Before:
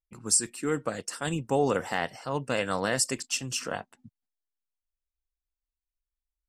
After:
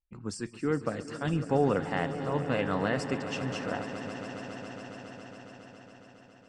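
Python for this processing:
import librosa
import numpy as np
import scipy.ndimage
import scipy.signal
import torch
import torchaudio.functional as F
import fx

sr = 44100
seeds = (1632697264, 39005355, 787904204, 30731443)

y = scipy.signal.sosfilt(scipy.signal.butter(2, 3000.0, 'lowpass', fs=sr, output='sos'), x)
y = fx.low_shelf(y, sr, hz=320.0, db=6.5)
y = fx.echo_swell(y, sr, ms=138, loudest=5, wet_db=-14.5)
y = F.gain(torch.from_numpy(y), -3.0).numpy()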